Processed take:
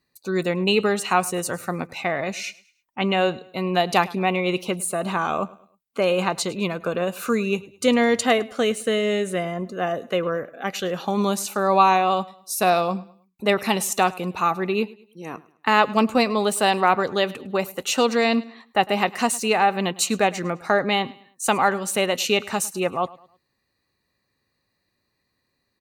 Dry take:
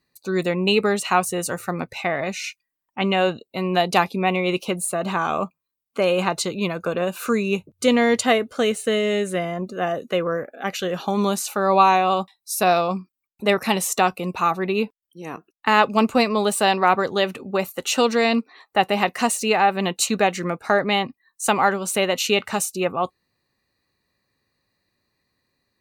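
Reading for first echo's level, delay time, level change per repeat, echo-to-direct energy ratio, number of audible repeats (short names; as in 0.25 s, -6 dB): -21.0 dB, 0.105 s, -8.5 dB, -20.5 dB, 2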